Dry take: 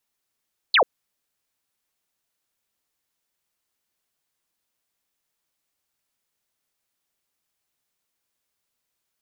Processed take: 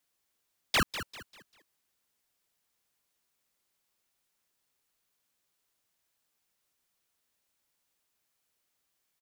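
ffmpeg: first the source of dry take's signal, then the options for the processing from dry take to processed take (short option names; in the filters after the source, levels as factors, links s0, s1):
-f lavfi -i "aevalsrc='0.224*clip(t/0.002,0,1)*clip((0.09-t)/0.002,0,1)*sin(2*PI*4600*0.09/log(420/4600)*(exp(log(420/4600)*t/0.09)-1))':d=0.09:s=44100"
-filter_complex "[0:a]alimiter=limit=0.0841:level=0:latency=1:release=96,asplit=5[s0][s1][s2][s3][s4];[s1]adelay=197,afreqshift=130,volume=0.266[s5];[s2]adelay=394,afreqshift=260,volume=0.0902[s6];[s3]adelay=591,afreqshift=390,volume=0.0309[s7];[s4]adelay=788,afreqshift=520,volume=0.0105[s8];[s0][s5][s6][s7][s8]amix=inputs=5:normalize=0,aeval=exprs='val(0)*sgn(sin(2*PI*710*n/s))':c=same"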